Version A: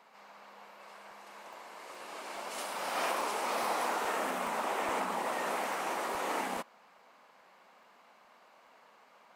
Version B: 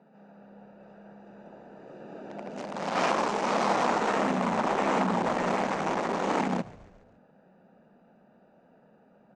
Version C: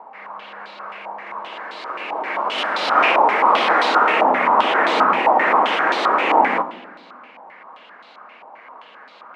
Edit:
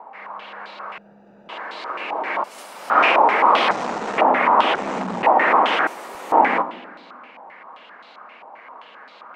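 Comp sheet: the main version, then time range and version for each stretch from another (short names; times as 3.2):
C
0.98–1.49 from B
2.44–2.9 from A
3.71–4.18 from B
4.75–5.23 from B
5.87–6.32 from A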